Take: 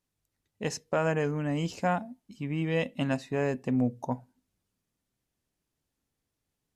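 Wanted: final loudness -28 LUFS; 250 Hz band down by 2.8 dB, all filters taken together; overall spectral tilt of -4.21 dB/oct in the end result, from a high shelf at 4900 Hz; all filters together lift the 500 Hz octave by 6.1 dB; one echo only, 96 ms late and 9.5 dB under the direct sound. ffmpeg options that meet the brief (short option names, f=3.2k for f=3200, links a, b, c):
-af "equalizer=f=250:t=o:g=-6,equalizer=f=500:t=o:g=8.5,highshelf=f=4.9k:g=-8,aecho=1:1:96:0.335,volume=-0.5dB"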